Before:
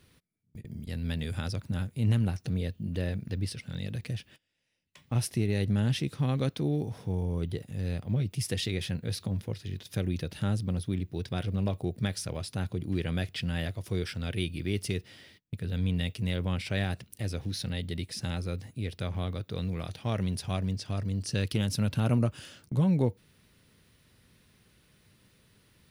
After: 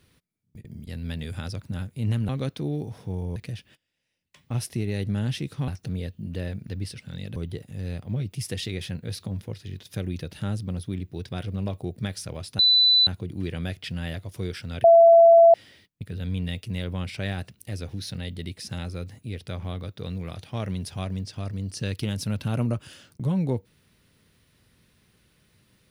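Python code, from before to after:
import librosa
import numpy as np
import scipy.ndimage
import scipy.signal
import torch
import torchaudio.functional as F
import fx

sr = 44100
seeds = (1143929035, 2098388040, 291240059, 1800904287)

y = fx.edit(x, sr, fx.swap(start_s=2.29, length_s=1.68, other_s=6.29, other_length_s=1.07),
    fx.insert_tone(at_s=12.59, length_s=0.48, hz=3990.0, db=-14.5),
    fx.bleep(start_s=14.36, length_s=0.7, hz=671.0, db=-9.5), tone=tone)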